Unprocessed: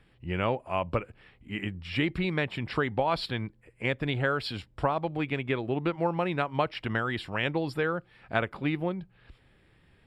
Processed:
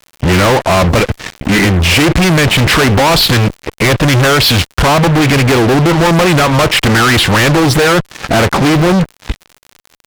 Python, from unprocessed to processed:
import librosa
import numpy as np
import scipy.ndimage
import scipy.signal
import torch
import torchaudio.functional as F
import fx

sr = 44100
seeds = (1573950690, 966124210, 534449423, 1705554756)

y = fx.fuzz(x, sr, gain_db=50.0, gate_db=-52.0)
y = fx.dmg_crackle(y, sr, seeds[0], per_s=78.0, level_db=-29.0)
y = fx.doppler_dist(y, sr, depth_ms=0.2)
y = F.gain(torch.from_numpy(y), 5.5).numpy()